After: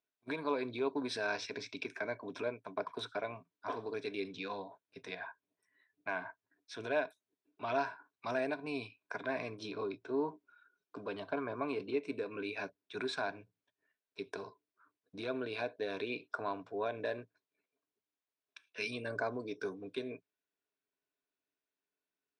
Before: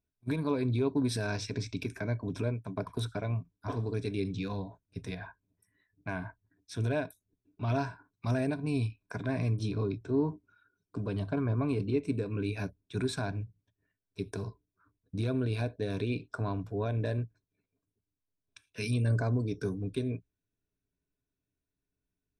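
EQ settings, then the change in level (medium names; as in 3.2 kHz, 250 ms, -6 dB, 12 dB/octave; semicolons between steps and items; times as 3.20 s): band-pass 510–4000 Hz; +2.0 dB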